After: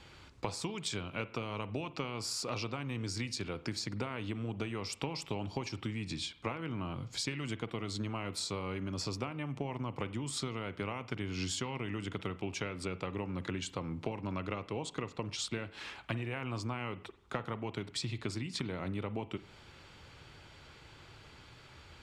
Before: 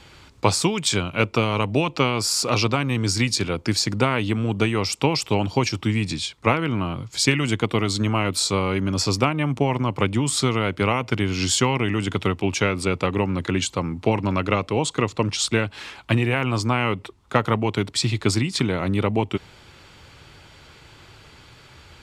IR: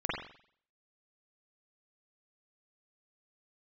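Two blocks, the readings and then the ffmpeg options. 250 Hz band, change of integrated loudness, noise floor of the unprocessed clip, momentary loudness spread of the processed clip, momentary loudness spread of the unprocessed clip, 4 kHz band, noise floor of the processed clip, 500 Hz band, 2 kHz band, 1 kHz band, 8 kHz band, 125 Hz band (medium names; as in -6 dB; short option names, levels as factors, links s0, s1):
-16.0 dB, -16.0 dB, -49 dBFS, 17 LU, 4 LU, -15.0 dB, -56 dBFS, -16.5 dB, -16.5 dB, -17.0 dB, -16.5 dB, -16.0 dB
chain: -filter_complex "[0:a]highshelf=f=10000:g=-8.5,acompressor=threshold=0.0447:ratio=6,asplit=2[s0][s1];[1:a]atrim=start_sample=2205[s2];[s1][s2]afir=irnorm=-1:irlink=0,volume=0.0944[s3];[s0][s3]amix=inputs=2:normalize=0,volume=0.398"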